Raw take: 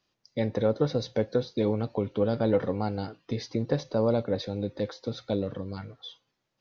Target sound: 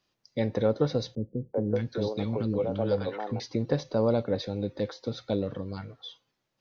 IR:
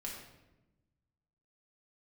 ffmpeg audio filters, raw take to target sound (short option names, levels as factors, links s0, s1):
-filter_complex "[0:a]asettb=1/sr,asplit=3[s0][s1][s2];[s0]atrim=end=1.154[s3];[s1]atrim=start=1.15:end=3.4,asetpts=PTS-STARTPTS,afade=t=in:d=0.004:c=qsin,afade=t=out:st=2.246:d=0.004:c=qsin,acrossover=split=340|1100[s4][s5][s6];[s5]adelay=380[s7];[s6]adelay=600[s8];[s4][s7][s8]amix=inputs=3:normalize=0,atrim=end_sample=99225[s9];[s2]atrim=start=3.396[s10];[s3][s9]acrossfade=d=0.004:c1=hsin:c2=qsin[s11];[s11][s10]acrossfade=d=0.004:c1=qsin:c2=hsin"